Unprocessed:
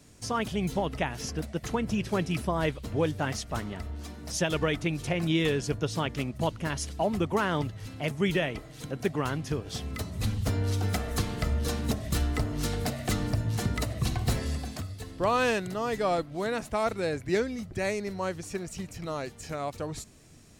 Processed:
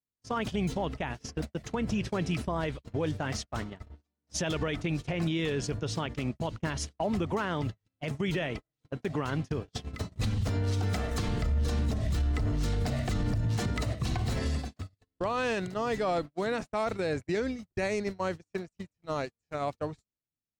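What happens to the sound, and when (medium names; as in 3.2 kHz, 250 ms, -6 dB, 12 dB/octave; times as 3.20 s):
11.28–13.48 s: bass shelf 110 Hz +10.5 dB
whole clip: gate -33 dBFS, range -47 dB; peaking EQ 12 kHz -13 dB 0.62 oct; peak limiter -25 dBFS; trim +3 dB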